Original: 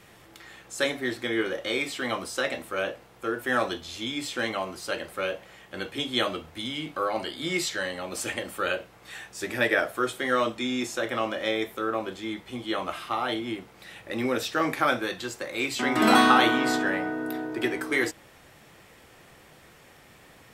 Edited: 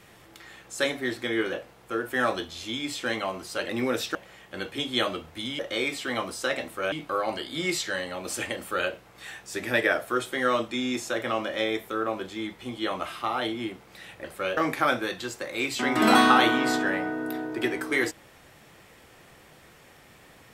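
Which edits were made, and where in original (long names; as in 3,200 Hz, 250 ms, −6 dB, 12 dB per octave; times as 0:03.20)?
0:01.53–0:02.86: move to 0:06.79
0:05.02–0:05.35: swap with 0:14.11–0:14.57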